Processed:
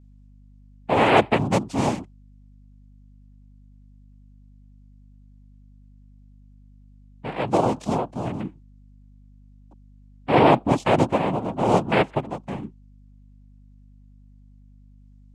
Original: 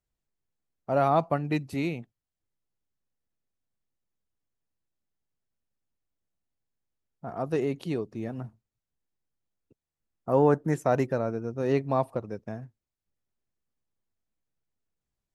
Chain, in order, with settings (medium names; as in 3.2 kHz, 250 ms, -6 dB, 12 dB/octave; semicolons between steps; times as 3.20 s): noise-vocoded speech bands 4; hum 50 Hz, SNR 24 dB; trim +6.5 dB